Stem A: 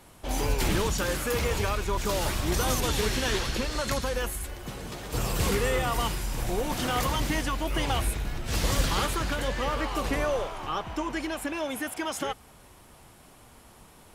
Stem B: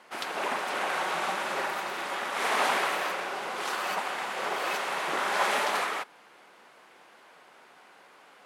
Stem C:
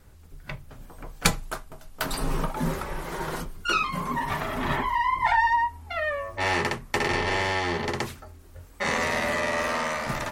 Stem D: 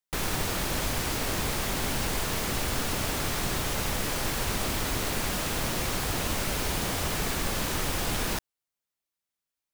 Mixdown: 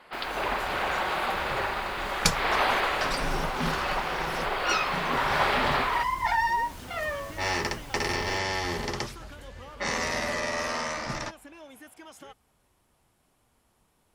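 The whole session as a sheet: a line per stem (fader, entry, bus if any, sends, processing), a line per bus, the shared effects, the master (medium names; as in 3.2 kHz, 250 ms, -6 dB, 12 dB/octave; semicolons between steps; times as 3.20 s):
-16.0 dB, 0.00 s, no send, none
+1.5 dB, 0.00 s, no send, steep low-pass 5 kHz 96 dB/octave
-4.0 dB, 1.00 s, no send, level-controlled noise filter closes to 2 kHz, open at -22 dBFS; peaking EQ 5.4 kHz +10.5 dB 0.45 oct
-19.5 dB, 0.00 s, no send, none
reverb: none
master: none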